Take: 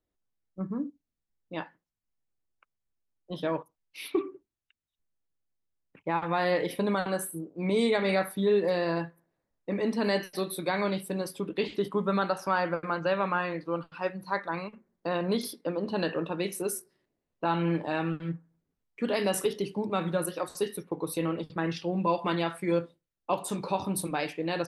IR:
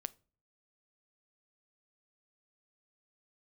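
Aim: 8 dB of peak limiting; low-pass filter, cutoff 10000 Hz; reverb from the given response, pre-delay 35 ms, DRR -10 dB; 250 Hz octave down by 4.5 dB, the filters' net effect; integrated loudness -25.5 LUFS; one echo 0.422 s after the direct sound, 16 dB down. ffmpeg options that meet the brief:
-filter_complex "[0:a]lowpass=10k,equalizer=f=250:t=o:g=-7,alimiter=limit=-23dB:level=0:latency=1,aecho=1:1:422:0.158,asplit=2[a][b];[1:a]atrim=start_sample=2205,adelay=35[c];[b][c]afir=irnorm=-1:irlink=0,volume=12.5dB[d];[a][d]amix=inputs=2:normalize=0,volume=-0.5dB"

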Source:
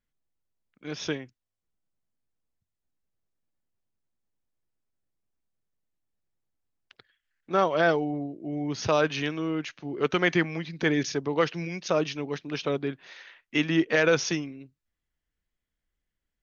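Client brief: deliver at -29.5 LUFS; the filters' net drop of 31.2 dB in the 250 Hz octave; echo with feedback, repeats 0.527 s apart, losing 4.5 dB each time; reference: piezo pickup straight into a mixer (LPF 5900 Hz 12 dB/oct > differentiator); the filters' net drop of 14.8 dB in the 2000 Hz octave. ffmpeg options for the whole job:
-af "lowpass=5.9k,aderivative,equalizer=f=250:t=o:g=-5.5,equalizer=f=2k:t=o:g=-4,aecho=1:1:527|1054|1581|2108|2635|3162|3689|4216|4743:0.596|0.357|0.214|0.129|0.0772|0.0463|0.0278|0.0167|0.01,volume=13.5dB"

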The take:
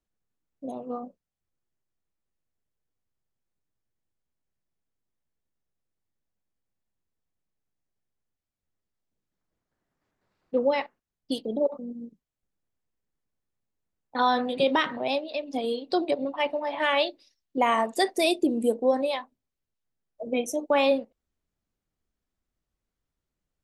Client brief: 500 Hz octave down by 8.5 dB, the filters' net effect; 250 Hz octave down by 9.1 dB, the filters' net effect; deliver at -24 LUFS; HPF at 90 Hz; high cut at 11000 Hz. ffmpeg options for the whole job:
-af "highpass=90,lowpass=11k,equalizer=f=250:t=o:g=-8,equalizer=f=500:t=o:g=-8.5,volume=7dB"

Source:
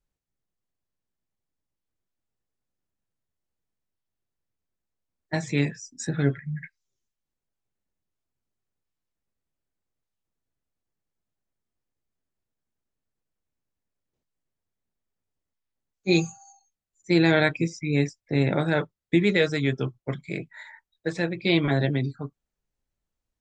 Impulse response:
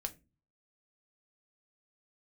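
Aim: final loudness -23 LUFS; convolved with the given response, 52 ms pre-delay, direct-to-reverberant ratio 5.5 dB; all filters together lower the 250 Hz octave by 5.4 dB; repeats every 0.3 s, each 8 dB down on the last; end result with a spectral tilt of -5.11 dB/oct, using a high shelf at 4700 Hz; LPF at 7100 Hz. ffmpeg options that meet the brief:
-filter_complex "[0:a]lowpass=7.1k,equalizer=f=250:t=o:g=-9,highshelf=f=4.7k:g=6,aecho=1:1:300|600|900|1200|1500:0.398|0.159|0.0637|0.0255|0.0102,asplit=2[a][b];[1:a]atrim=start_sample=2205,adelay=52[c];[b][c]afir=irnorm=-1:irlink=0,volume=-4.5dB[d];[a][d]amix=inputs=2:normalize=0,volume=3dB"

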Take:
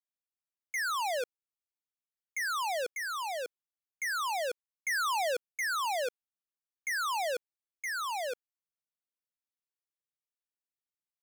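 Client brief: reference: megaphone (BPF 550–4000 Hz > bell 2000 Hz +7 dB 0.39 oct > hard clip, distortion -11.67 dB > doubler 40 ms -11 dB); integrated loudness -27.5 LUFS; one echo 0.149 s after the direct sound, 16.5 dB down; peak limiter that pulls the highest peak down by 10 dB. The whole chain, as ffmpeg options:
-filter_complex "[0:a]alimiter=level_in=16dB:limit=-24dB:level=0:latency=1,volume=-16dB,highpass=550,lowpass=4k,equalizer=f=2k:t=o:w=0.39:g=7,aecho=1:1:149:0.15,asoftclip=type=hard:threshold=-39dB,asplit=2[a][b];[b]adelay=40,volume=-11dB[c];[a][c]amix=inputs=2:normalize=0,volume=15.5dB"

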